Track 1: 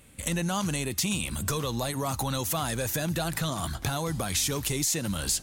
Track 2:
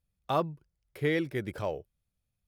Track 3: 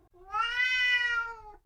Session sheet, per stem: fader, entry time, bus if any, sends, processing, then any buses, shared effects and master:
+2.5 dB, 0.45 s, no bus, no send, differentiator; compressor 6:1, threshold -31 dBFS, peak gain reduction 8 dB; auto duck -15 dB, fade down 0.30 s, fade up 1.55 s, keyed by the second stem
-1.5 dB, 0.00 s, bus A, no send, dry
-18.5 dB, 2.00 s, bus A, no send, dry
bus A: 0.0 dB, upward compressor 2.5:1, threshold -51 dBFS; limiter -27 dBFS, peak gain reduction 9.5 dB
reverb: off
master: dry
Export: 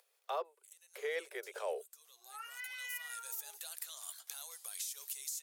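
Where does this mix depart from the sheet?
stem 1 +2.5 dB -> -7.5 dB; master: extra steep high-pass 400 Hz 96 dB/oct

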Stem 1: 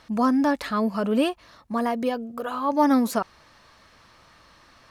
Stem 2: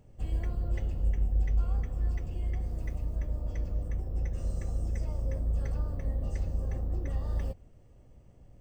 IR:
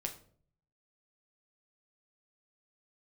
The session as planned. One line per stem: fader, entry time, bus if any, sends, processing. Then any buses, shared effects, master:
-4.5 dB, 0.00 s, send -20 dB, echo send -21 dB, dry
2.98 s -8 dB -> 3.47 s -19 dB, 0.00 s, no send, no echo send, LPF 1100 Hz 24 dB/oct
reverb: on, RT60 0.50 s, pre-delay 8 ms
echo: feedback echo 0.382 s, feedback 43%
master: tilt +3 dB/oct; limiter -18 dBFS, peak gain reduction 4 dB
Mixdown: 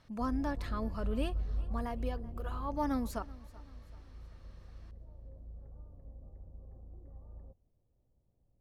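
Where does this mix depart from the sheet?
stem 1 -4.5 dB -> -15.0 dB; master: missing tilt +3 dB/oct

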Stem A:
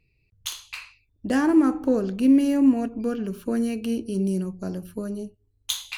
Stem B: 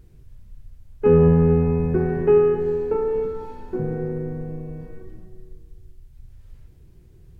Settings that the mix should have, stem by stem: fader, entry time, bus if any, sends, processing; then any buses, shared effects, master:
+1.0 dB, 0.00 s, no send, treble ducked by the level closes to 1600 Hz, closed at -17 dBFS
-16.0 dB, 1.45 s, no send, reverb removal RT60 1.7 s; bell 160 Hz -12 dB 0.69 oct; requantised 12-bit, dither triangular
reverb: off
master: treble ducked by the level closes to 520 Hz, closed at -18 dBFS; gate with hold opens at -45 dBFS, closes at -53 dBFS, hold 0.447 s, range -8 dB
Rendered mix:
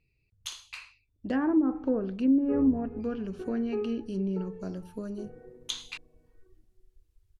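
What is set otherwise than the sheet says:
stem A +1.0 dB -> -6.0 dB; master: missing gate with hold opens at -45 dBFS, closes at -53 dBFS, hold 0.447 s, range -8 dB

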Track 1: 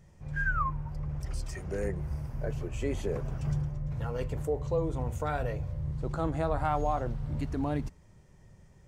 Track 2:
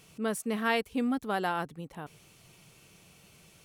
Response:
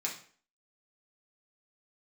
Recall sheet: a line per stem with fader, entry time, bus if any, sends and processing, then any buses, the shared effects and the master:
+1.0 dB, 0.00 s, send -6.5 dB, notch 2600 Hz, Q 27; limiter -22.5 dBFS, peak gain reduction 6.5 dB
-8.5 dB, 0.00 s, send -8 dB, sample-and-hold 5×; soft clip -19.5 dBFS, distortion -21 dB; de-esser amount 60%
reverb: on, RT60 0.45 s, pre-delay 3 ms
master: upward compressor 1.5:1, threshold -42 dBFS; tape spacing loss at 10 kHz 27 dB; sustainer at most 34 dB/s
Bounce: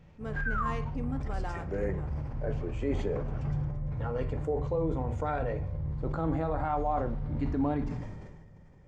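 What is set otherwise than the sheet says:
stem 2: missing de-esser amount 60%; master: missing upward compressor 1.5:1, threshold -42 dBFS

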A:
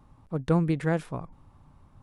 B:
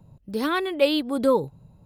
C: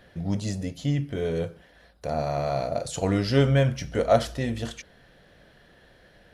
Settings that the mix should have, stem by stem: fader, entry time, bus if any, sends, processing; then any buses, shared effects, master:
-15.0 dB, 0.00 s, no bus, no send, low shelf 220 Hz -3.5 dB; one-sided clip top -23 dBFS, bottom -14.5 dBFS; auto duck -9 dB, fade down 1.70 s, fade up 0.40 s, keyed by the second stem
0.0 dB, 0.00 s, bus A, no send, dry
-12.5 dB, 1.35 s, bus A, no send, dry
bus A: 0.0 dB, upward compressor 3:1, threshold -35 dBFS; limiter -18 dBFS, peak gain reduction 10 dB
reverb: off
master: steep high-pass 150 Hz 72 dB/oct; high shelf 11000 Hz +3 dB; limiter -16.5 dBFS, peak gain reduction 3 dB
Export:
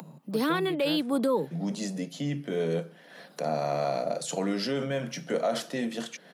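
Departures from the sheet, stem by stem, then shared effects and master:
stem A -15.0 dB -> -6.5 dB; stem C -12.5 dB -> -0.5 dB

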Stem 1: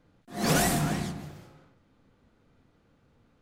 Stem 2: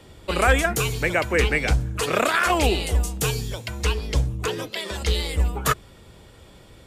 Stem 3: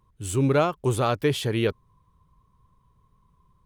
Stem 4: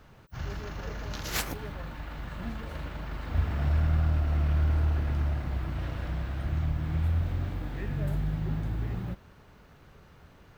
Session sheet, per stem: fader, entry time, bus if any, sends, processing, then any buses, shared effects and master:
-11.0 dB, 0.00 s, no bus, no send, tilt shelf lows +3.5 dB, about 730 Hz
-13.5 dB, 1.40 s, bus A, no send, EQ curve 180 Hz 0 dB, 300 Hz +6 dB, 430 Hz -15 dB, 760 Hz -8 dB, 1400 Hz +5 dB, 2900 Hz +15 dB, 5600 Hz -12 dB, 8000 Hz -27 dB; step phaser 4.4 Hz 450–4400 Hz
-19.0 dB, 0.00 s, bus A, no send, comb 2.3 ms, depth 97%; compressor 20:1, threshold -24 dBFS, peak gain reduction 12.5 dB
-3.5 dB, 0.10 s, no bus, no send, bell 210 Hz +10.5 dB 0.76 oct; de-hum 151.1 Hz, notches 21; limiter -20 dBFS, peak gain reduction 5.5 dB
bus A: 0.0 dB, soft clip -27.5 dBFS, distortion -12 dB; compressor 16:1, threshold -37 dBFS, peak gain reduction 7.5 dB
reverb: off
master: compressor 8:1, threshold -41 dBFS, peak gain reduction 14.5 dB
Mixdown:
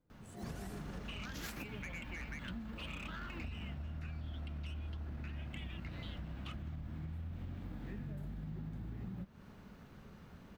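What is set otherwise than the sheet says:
stem 1 -11.0 dB -> -17.0 dB; stem 2: entry 1.40 s -> 0.80 s; stem 3 -19.0 dB -> -30.5 dB

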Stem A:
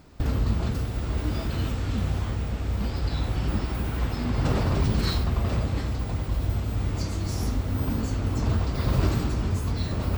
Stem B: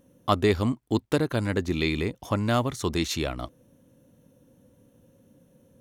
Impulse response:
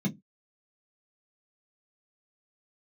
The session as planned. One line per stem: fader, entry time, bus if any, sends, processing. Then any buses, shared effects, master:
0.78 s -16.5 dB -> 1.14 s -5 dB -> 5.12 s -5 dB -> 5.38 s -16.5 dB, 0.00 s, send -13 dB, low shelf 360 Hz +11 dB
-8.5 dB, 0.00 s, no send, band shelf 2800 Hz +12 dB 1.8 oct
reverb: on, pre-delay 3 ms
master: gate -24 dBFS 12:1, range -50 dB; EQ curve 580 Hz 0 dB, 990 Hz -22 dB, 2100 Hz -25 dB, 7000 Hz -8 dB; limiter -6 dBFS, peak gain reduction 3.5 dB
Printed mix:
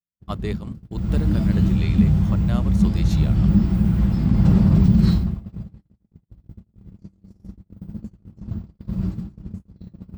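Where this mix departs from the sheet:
stem B: missing band shelf 2800 Hz +12 dB 1.8 oct; master: missing EQ curve 580 Hz 0 dB, 990 Hz -22 dB, 2100 Hz -25 dB, 7000 Hz -8 dB

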